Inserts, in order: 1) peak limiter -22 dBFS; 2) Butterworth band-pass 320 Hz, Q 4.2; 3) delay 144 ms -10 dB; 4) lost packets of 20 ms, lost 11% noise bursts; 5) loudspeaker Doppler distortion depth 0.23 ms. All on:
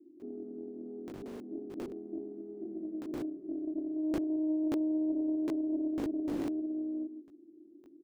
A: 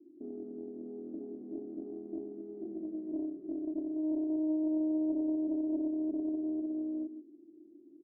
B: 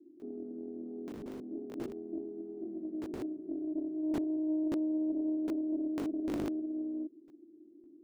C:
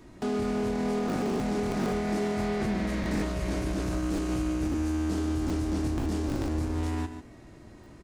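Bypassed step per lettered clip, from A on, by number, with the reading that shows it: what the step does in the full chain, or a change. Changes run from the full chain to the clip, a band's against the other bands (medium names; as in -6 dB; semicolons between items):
4, crest factor change -2.0 dB; 3, momentary loudness spread change -2 LU; 2, 125 Hz band +15.0 dB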